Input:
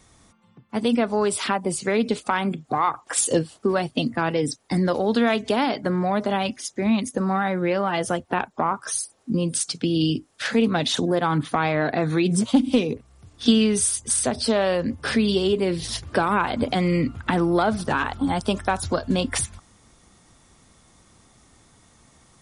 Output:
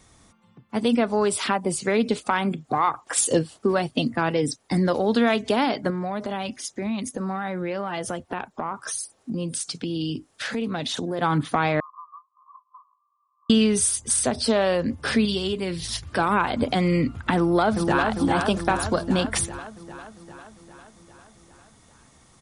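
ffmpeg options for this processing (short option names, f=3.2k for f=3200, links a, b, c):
-filter_complex "[0:a]asettb=1/sr,asplit=3[a][b][c];[a]atrim=end=5.904[d];[b]atrim=start=5.9:end=11.19,asetpts=PTS-STARTPTS,afade=t=in:d=0.004:c=qsin,afade=t=out:st=5.286:d=0.004:c=qsin,acompressor=threshold=-27dB:ratio=2.5:attack=3.2:release=140:knee=1:detection=peak[e];[c]atrim=start=11.186[f];[d][e]acrossfade=d=0.004:c1=hsin:c2=qsin[g];[g][f]acrossfade=d=0.004:c1=qsin:c2=hsin,asettb=1/sr,asplit=3[h][i][j];[h]atrim=end=11.804[k];[i]atrim=start=11.8:end=13.5,asetpts=PTS-STARTPTS,afade=t=in:d=0.004:c=qsin,afade=t=out:st=1.696:d=0.004:c=qsin,asuperpass=centerf=1100:order=12:qfactor=4.4[l];[j]atrim=start=13.496[m];[k][l]acrossfade=d=0.004:c1=hsin:c2=qsin[n];[n][m]acrossfade=d=0.004:c1=qsin:c2=hsin,asettb=1/sr,asplit=3[o][p][q];[o]atrim=end=15.254[r];[p]atrim=start=15.25:end=16.19,asetpts=PTS-STARTPTS,afade=t=in:d=0.004:c=qsin,afade=t=out:st=0.936:d=0.004:c=qsin,equalizer=f=430:w=0.57:g=-7[s];[q]atrim=start=16.186[t];[r][s]acrossfade=d=0.004:c1=hsin:c2=qsin[u];[u][t]acrossfade=d=0.004:c1=qsin:c2=hsin,asplit=2[v][w];[w]afade=t=in:st=17.36:d=0.01,afade=t=out:st=18.07:d=0.01,aecho=0:1:400|800|1200|1600|2000|2400|2800|3200|3600|4000:0.595662|0.38718|0.251667|0.163584|0.106329|0.0691141|0.0449242|0.0292007|0.0189805|0.0123373[x];[v][x]amix=inputs=2:normalize=0"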